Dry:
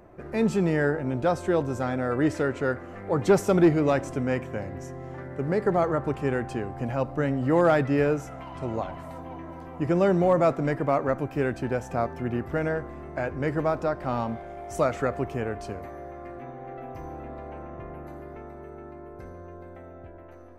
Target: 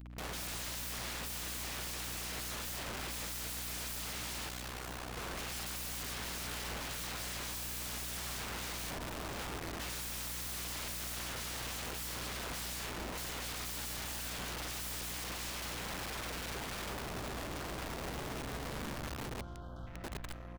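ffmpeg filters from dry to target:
-filter_complex "[0:a]equalizer=f=370:w=0.86:g=-9,asplit=2[s0][s1];[s1]aecho=0:1:40|90|152.5|230.6|328.3:0.631|0.398|0.251|0.158|0.1[s2];[s0][s2]amix=inputs=2:normalize=0,acrusher=bits=6:mix=0:aa=0.5,acompressor=mode=upward:threshold=0.0282:ratio=2.5,asettb=1/sr,asplit=3[s3][s4][s5];[s3]atrim=end=19.004[s6];[s4]atrim=start=19:end=19.87,asetpts=PTS-STARTPTS,afade=t=in:d=0.004:c=qsin,afade=t=out:st=0.866:d=0.004:c=qsin,asuperstop=centerf=2200:order=20:qfactor=1.6[s7];[s5]atrim=start=19.866[s8];[s6][s7]acrossfade=d=0.004:c1=hsin:c2=qsin[s9];[s9][s8]acrossfade=d=0.004:c1=qsin:c2=hsin,afwtdn=0.0355,asplit=2[s10][s11];[s11]aecho=0:1:602:0.178[s12];[s10][s12]amix=inputs=2:normalize=0,aeval=exprs='(mod(141*val(0)+1,2)-1)/141':c=same,asettb=1/sr,asplit=3[s13][s14][s15];[s13]atrim=end=4.484[s16];[s14]atrim=start=4.48:end=5.17,asetpts=PTS-STARTPTS,afade=t=in:d=0.004:c=qsin,afade=t=out:st=0.686:d=0.004:c=qsin,aeval=exprs='val(0)*sin(2*PI*32*n/s)':c=same[s17];[s15]atrim=start=5.166[s18];[s16][s17]acrossfade=d=0.004:c1=hsin:c2=qsin[s19];[s19][s18]acrossfade=d=0.004:c1=qsin:c2=hsin,aeval=exprs='val(0)+0.00224*(sin(2*PI*60*n/s)+sin(2*PI*2*60*n/s)/2+sin(2*PI*3*60*n/s)/3+sin(2*PI*4*60*n/s)/4+sin(2*PI*5*60*n/s)/5)':c=same,volume=2"

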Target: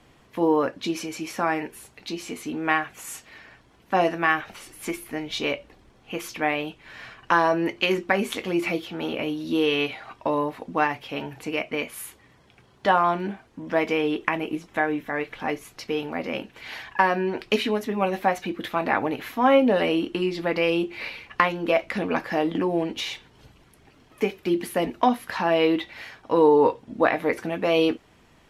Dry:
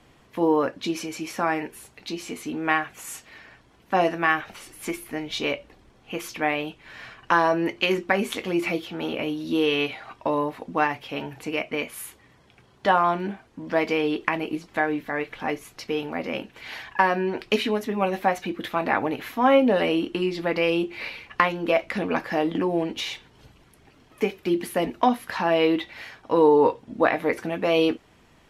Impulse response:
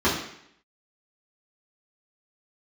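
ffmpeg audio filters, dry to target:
-filter_complex "[0:a]asettb=1/sr,asplit=3[s0][s1][s2];[s0]atrim=end=13.604[s3];[s1]atrim=start=13.6:end=15.14,asetpts=PTS-STARTPTS,afade=t=in:d=0.004:c=qsin,afade=t=out:st=1.536:d=0.004:c=qsin,equalizer=f=4500:w=7.6:g=-10[s4];[s2]atrim=start=15.136[s5];[s3][s4]acrossfade=d=0.004:c1=hsin:c2=qsin[s6];[s6][s5]acrossfade=d=0.004:c1=qsin:c2=hsin"

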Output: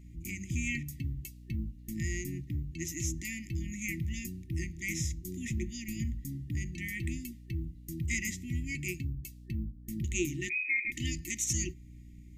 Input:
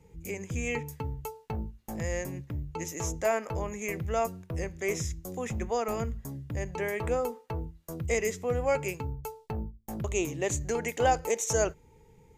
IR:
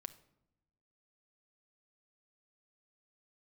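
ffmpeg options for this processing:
-filter_complex "[0:a]aeval=exprs='val(0)+0.00355*(sin(2*PI*60*n/s)+sin(2*PI*2*60*n/s)/2+sin(2*PI*3*60*n/s)/3+sin(2*PI*4*60*n/s)/4+sin(2*PI*5*60*n/s)/5)':c=same,asettb=1/sr,asplit=3[s0][s1][s2];[s0]atrim=end=10.494[s3];[s1]atrim=start=10.49:end=10.92,asetpts=PTS-STARTPTS,afade=t=in:d=0.004:c=qsin,afade=t=out:st=0.426:d=0.004:c=qsin,lowpass=f=2200:t=q:w=0.5098,lowpass=f=2200:t=q:w=0.6013,lowpass=f=2200:t=q:w=0.9,lowpass=f=2200:t=q:w=2.563,afreqshift=-2600[s4];[s2]atrim=start=10.916[s5];[s3][s4]acrossfade=d=0.004:c1=hsin:c2=qsin[s6];[s6][s5]acrossfade=d=0.004:c1=qsin:c2=hsin,afftfilt=real='re*(1-between(b*sr/4096,370,1800))':imag='im*(1-between(b*sr/4096,370,1800))':win_size=4096:overlap=0.75"

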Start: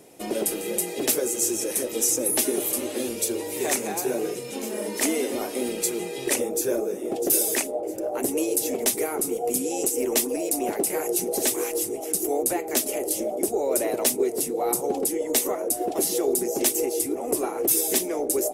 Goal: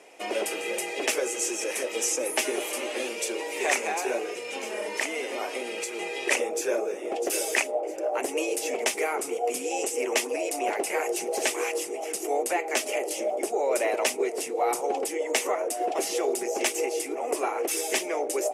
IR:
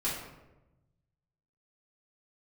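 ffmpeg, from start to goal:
-filter_complex "[0:a]asettb=1/sr,asplit=3[s0][s1][s2];[s0]atrim=end=4.174[s3];[s1]atrim=start=4.17:end=5.99,asetpts=PTS-STARTPTS,afade=t=in:d=0.004:c=qsin,afade=t=out:st=1.816:d=0.004:c=qsin,acompressor=threshold=0.0501:ratio=6[s4];[s2]atrim=start=5.986[s5];[s3][s4]acrossfade=d=0.004:c1=hsin:c2=qsin[s6];[s6][s5]acrossfade=d=0.004:c1=qsin:c2=hsin,aexciter=amount=1.2:drive=6.4:freq=2100,highpass=620,lowpass=3400,volume=1.68"

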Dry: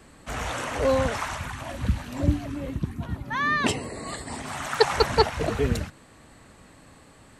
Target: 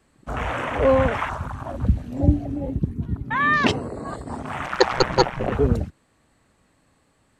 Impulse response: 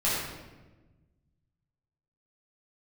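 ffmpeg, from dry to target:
-filter_complex "[0:a]afwtdn=0.0224,asettb=1/sr,asplit=3[s0][s1][s2];[s0]atrim=end=4.664[s3];[s1]atrim=start=4.66:end=5.52,asetpts=PTS-STARTPTS,afade=t=in:d=0.004:c=qsin,afade=t=out:st=0.856:d=0.004:c=qsin,aeval=exprs='val(0)*sin(2*PI*63*n/s)':c=same[s4];[s2]atrim=start=5.516[s5];[s3][s4]acrossfade=d=0.004:c1=hsin:c2=qsin[s6];[s6][s5]acrossfade=d=0.004:c1=qsin:c2=hsin,volume=1.78"

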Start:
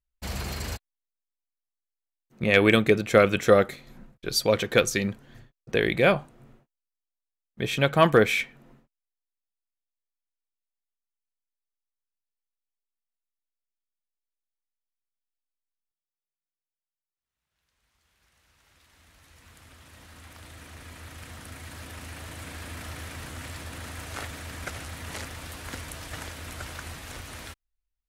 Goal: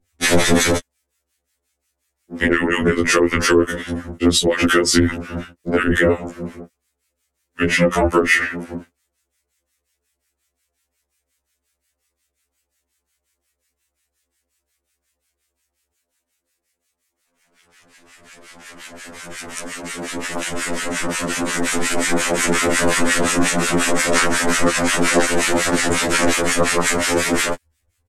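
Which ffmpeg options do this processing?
-filter_complex "[0:a]acrossover=split=1400[s0][s1];[s0]aeval=exprs='val(0)*(1-1/2+1/2*cos(2*PI*5.6*n/s))':c=same[s2];[s1]aeval=exprs='val(0)*(1-1/2-1/2*cos(2*PI*5.6*n/s))':c=same[s3];[s2][s3]amix=inputs=2:normalize=0,adynamicequalizer=threshold=0.00501:dfrequency=1600:dqfactor=3:tfrequency=1600:tqfactor=3:attack=5:release=100:ratio=0.375:range=3:mode=boostabove:tftype=bell,asetrate=36028,aresample=44100,atempo=1.22405,acompressor=threshold=0.0501:ratio=16,aeval=exprs='val(0)*sin(2*PI*63*n/s)':c=same,acrossover=split=130[s4][s5];[s5]acompressor=threshold=0.00794:ratio=6[s6];[s4][s6]amix=inputs=2:normalize=0,equalizer=f=125:t=o:w=1:g=-9,equalizer=f=250:t=o:w=1:g=10,equalizer=f=500:t=o:w=1:g=9,equalizer=f=2000:t=o:w=1:g=7,equalizer=f=8000:t=o:w=1:g=8,alimiter=level_in=23.7:limit=0.891:release=50:level=0:latency=1,afftfilt=real='re*2*eq(mod(b,4),0)':imag='im*2*eq(mod(b,4),0)':win_size=2048:overlap=0.75"

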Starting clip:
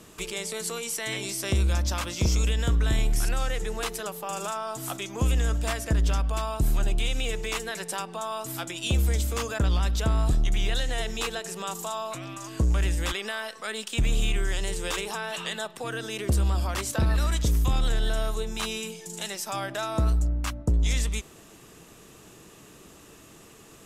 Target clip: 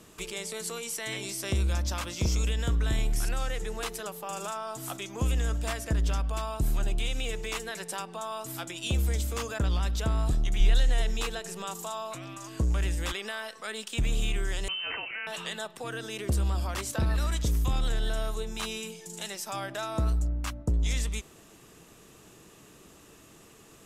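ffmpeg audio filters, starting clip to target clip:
-filter_complex "[0:a]asettb=1/sr,asplit=3[s0][s1][s2];[s0]atrim=end=10.604[s3];[s1]atrim=start=10.6:end=11.65,asetpts=PTS-STARTPTS,afade=t=in:d=0.004:c=qsin,afade=t=out:st=1.046:d=0.004:c=qsin,lowshelf=f=76:g=12[s4];[s2]atrim=start=11.646[s5];[s3][s4]acrossfade=d=0.004:c1=hsin:c2=qsin[s6];[s6][s5]acrossfade=d=0.004:c1=qsin:c2=hsin,asettb=1/sr,asplit=3[s7][s8][s9];[s7]atrim=end=14.684[s10];[s8]atrim=start=14.68:end=15.27,asetpts=PTS-STARTPTS,afade=t=in:d=0.004:c=qsin,afade=t=out:st=0.586:d=0.004:c=qsin,lowpass=f=2600:t=q:w=0.5098,lowpass=f=2600:t=q:w=0.6013,lowpass=f=2600:t=q:w=0.9,lowpass=f=2600:t=q:w=2.563,afreqshift=-3100[s11];[s9]atrim=start=15.266[s12];[s10][s11]acrossfade=d=0.004:c1=hsin:c2=qsin[s13];[s13][s12]acrossfade=d=0.004:c1=qsin:c2=hsin,volume=0.668"

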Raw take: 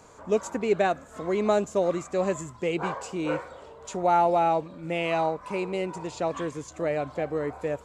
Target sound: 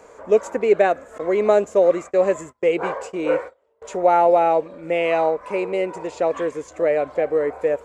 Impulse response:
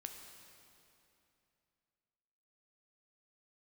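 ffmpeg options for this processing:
-filter_complex "[0:a]asettb=1/sr,asplit=3[s0][s1][s2];[s0]atrim=end=1.184[s3];[s1]atrim=start=1.18:end=3.82,asetpts=PTS-STARTPTS,afade=t=in:d=0.004:c=qsin,afade=t=out:st=2.636:d=0.004:c=qsin,agate=range=0.0398:threshold=0.0126:ratio=16:detection=peak[s4];[s2]atrim=start=3.816[s5];[s3][s4]acrossfade=d=0.004:c1=hsin:c2=qsin[s6];[s6][s5]acrossfade=d=0.004:c1=qsin:c2=hsin,equalizer=f=125:t=o:w=1:g=-8,equalizer=f=500:t=o:w=1:g=11,equalizer=f=2000:t=o:w=1:g=7,equalizer=f=4000:t=o:w=1:g=-3"

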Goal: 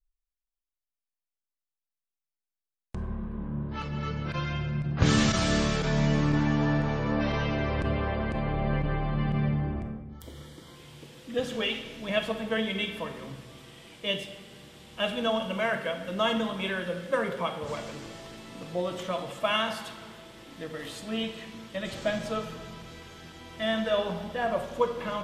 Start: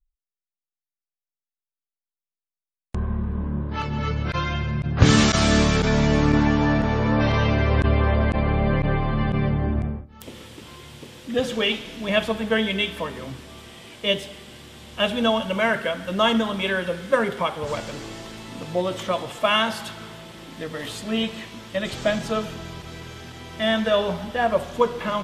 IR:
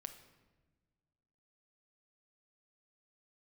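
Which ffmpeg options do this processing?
-filter_complex "[0:a]asettb=1/sr,asplit=3[s0][s1][s2];[s0]atrim=end=9.954[s3];[s1]atrim=start=9.95:end=10.76,asetpts=PTS-STARTPTS,afade=t=in:d=0.004:c=qsin,afade=t=out:st=0.806:d=0.004:c=qsin,asuperstop=centerf=2600:order=4:qfactor=4.3[s4];[s2]atrim=start=10.756[s5];[s3][s4]acrossfade=d=0.004:c1=hsin:c2=qsin[s6];[s6][s5]acrossfade=d=0.004:c1=qsin:c2=hsin[s7];[1:a]atrim=start_sample=2205[s8];[s7][s8]afir=irnorm=-1:irlink=0,volume=0.75"

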